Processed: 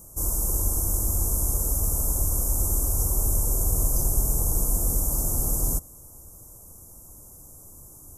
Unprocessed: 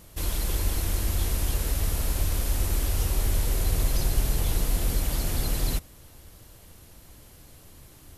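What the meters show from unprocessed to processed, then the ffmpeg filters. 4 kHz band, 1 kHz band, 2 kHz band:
-11.0 dB, -1.0 dB, under -15 dB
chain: -af "asuperstop=centerf=2900:order=8:qfactor=0.54,highshelf=f=3900:t=q:w=1.5:g=8"

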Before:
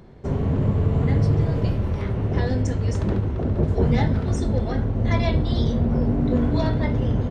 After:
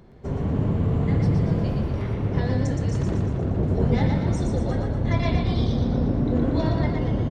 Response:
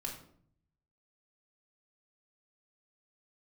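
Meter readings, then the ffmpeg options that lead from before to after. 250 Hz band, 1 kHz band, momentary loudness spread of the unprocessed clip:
-0.5 dB, -1.0 dB, 4 LU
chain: -filter_complex "[0:a]asplit=8[s0][s1][s2][s3][s4][s5][s6][s7];[s1]adelay=118,afreqshift=33,volume=0.631[s8];[s2]adelay=236,afreqshift=66,volume=0.339[s9];[s3]adelay=354,afreqshift=99,volume=0.184[s10];[s4]adelay=472,afreqshift=132,volume=0.0989[s11];[s5]adelay=590,afreqshift=165,volume=0.0537[s12];[s6]adelay=708,afreqshift=198,volume=0.0288[s13];[s7]adelay=826,afreqshift=231,volume=0.0157[s14];[s0][s8][s9][s10][s11][s12][s13][s14]amix=inputs=8:normalize=0,volume=0.668"

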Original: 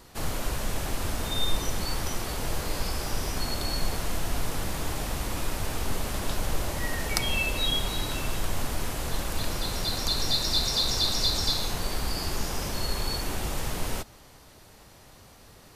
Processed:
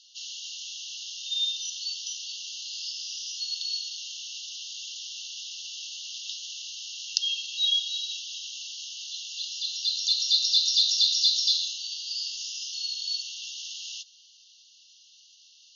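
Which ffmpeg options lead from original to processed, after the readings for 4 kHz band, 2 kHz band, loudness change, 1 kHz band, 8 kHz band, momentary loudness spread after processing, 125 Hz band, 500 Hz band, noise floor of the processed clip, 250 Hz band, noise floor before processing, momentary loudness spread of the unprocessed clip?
+4.5 dB, -10.5 dB, +1.5 dB, under -40 dB, +0.5 dB, 15 LU, under -40 dB, under -40 dB, -56 dBFS, under -40 dB, -52 dBFS, 8 LU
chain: -af "afftfilt=real='re*between(b*sr/4096,2700,6800)':imag='im*between(b*sr/4096,2700,6800)':win_size=4096:overlap=0.75,volume=1.68"

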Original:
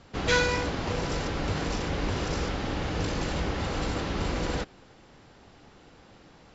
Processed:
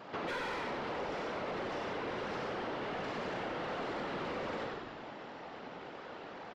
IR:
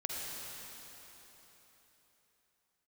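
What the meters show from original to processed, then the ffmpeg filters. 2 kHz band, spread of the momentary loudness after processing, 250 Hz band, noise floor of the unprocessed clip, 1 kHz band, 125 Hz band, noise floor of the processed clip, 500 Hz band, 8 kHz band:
-9.0 dB, 9 LU, -10.0 dB, -55 dBFS, -4.5 dB, -18.0 dB, -48 dBFS, -6.0 dB, no reading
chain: -filter_complex "[1:a]atrim=start_sample=2205,afade=t=out:st=0.15:d=0.01,atrim=end_sample=7056,asetrate=61740,aresample=44100[s0];[0:a][s0]afir=irnorm=-1:irlink=0,afftfilt=real='hypot(re,im)*cos(2*PI*random(0))':imag='hypot(re,im)*sin(2*PI*random(1))':win_size=512:overlap=0.75,highpass=160,lowpass=4900,asplit=7[s1][s2][s3][s4][s5][s6][s7];[s2]adelay=95,afreqshift=-83,volume=0.596[s8];[s3]adelay=190,afreqshift=-166,volume=0.285[s9];[s4]adelay=285,afreqshift=-249,volume=0.136[s10];[s5]adelay=380,afreqshift=-332,volume=0.0661[s11];[s6]adelay=475,afreqshift=-415,volume=0.0316[s12];[s7]adelay=570,afreqshift=-498,volume=0.0151[s13];[s1][s8][s9][s10][s11][s12][s13]amix=inputs=7:normalize=0,asplit=2[s14][s15];[s15]highpass=f=720:p=1,volume=11.2,asoftclip=type=tanh:threshold=0.0891[s16];[s14][s16]amix=inputs=2:normalize=0,lowpass=f=1100:p=1,volume=0.501,acompressor=threshold=0.00398:ratio=3,volume=2.37"

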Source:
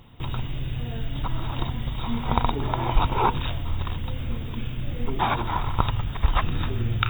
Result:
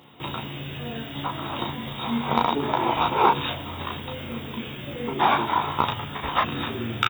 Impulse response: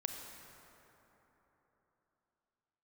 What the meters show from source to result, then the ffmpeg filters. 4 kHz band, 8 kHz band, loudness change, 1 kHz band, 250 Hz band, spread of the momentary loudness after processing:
+4.5 dB, no reading, +1.5 dB, +4.5 dB, +2.5 dB, 13 LU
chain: -af "highpass=230,acontrast=58,aecho=1:1:14|35:0.596|0.708,volume=0.631"

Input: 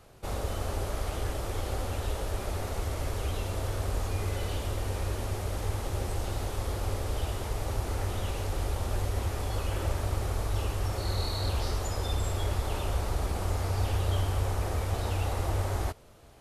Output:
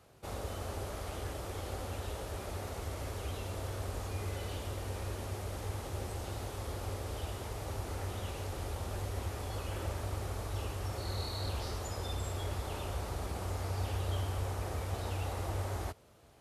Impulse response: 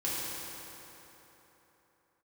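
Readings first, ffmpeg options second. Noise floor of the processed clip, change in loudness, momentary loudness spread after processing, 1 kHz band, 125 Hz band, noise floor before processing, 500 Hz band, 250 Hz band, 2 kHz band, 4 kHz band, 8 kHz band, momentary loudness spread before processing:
-43 dBFS, -6.5 dB, 4 LU, -5.5 dB, -6.5 dB, -36 dBFS, -5.5 dB, -5.5 dB, -5.5 dB, -5.5 dB, -5.5 dB, 3 LU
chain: -af "highpass=62,volume=0.531"

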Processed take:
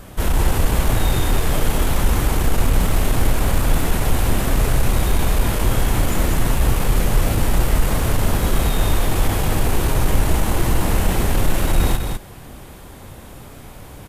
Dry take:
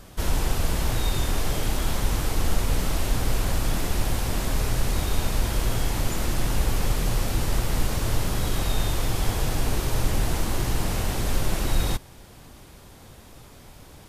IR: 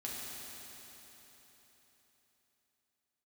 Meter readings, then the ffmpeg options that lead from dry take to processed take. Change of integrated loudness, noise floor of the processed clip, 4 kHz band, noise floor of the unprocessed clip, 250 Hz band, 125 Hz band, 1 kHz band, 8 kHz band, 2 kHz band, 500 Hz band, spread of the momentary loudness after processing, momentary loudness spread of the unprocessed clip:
+6.5 dB, -39 dBFS, +3.5 dB, -47 dBFS, +7.5 dB, +7.0 dB, +7.5 dB, +4.5 dB, +6.5 dB, +7.5 dB, 19 LU, 1 LU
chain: -af "asoftclip=type=tanh:threshold=0.168,equalizer=f=5100:t=o:w=1.1:g=-7,aecho=1:1:32.07|201.2:0.316|0.562,volume=2.37"

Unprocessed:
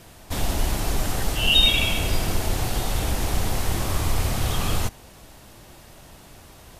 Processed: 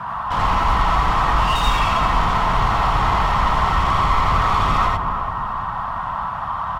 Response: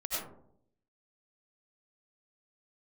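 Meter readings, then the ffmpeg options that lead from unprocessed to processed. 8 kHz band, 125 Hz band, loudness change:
-9.0 dB, +3.0 dB, +4.5 dB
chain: -filter_complex "[0:a]firequalizer=gain_entry='entry(180,0);entry(360,-28);entry(1000,11);entry(2100,-16);entry(6900,-29)':delay=0.05:min_phase=1,acrossover=split=210|3000[s0][s1][s2];[s1]acompressor=threshold=0.0251:ratio=6[s3];[s0][s3][s2]amix=inputs=3:normalize=0,asplit=2[s4][s5];[s5]highpass=f=720:p=1,volume=70.8,asoftclip=type=tanh:threshold=0.355[s6];[s4][s6]amix=inputs=2:normalize=0,lowpass=f=1800:p=1,volume=0.501,asplit=2[s7][s8];[s8]adelay=343,lowpass=f=930:p=1,volume=0.473,asplit=2[s9][s10];[s10]adelay=343,lowpass=f=930:p=1,volume=0.53,asplit=2[s11][s12];[s12]adelay=343,lowpass=f=930:p=1,volume=0.53,asplit=2[s13][s14];[s14]adelay=343,lowpass=f=930:p=1,volume=0.53,asplit=2[s15][s16];[s16]adelay=343,lowpass=f=930:p=1,volume=0.53,asplit=2[s17][s18];[s18]adelay=343,lowpass=f=930:p=1,volume=0.53,asplit=2[s19][s20];[s20]adelay=343,lowpass=f=930:p=1,volume=0.53[s21];[s7][s9][s11][s13][s15][s17][s19][s21]amix=inputs=8:normalize=0[s22];[1:a]atrim=start_sample=2205,atrim=end_sample=3969[s23];[s22][s23]afir=irnorm=-1:irlink=0"

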